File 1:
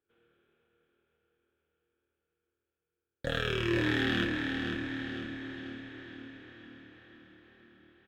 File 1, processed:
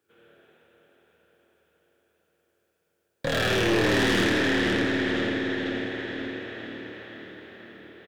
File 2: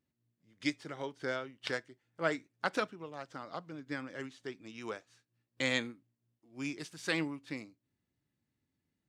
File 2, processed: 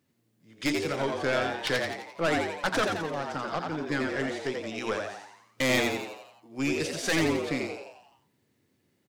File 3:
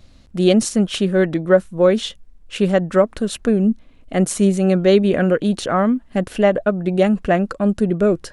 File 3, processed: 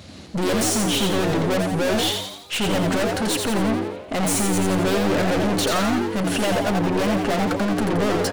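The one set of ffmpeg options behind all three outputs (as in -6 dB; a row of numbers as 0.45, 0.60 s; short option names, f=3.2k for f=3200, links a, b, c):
-filter_complex "[0:a]highpass=f=84:w=0.5412,highpass=f=84:w=1.3066,bandreject=f=60:t=h:w=6,bandreject=f=120:t=h:w=6,bandreject=f=180:t=h:w=6,bandreject=f=240:t=h:w=6,bandreject=f=300:t=h:w=6,bandreject=f=360:t=h:w=6,bandreject=f=420:t=h:w=6,acontrast=80,aeval=exprs='(tanh(22.4*val(0)+0.25)-tanh(0.25))/22.4':c=same,asplit=2[a][b];[b]asplit=7[c][d][e][f][g][h][i];[c]adelay=86,afreqshift=97,volume=-4dB[j];[d]adelay=172,afreqshift=194,volume=-9.7dB[k];[e]adelay=258,afreqshift=291,volume=-15.4dB[l];[f]adelay=344,afreqshift=388,volume=-21dB[m];[g]adelay=430,afreqshift=485,volume=-26.7dB[n];[h]adelay=516,afreqshift=582,volume=-32.4dB[o];[i]adelay=602,afreqshift=679,volume=-38.1dB[p];[j][k][l][m][n][o][p]amix=inputs=7:normalize=0[q];[a][q]amix=inputs=2:normalize=0,volume=5.5dB"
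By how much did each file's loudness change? +7.5, +9.0, -3.5 LU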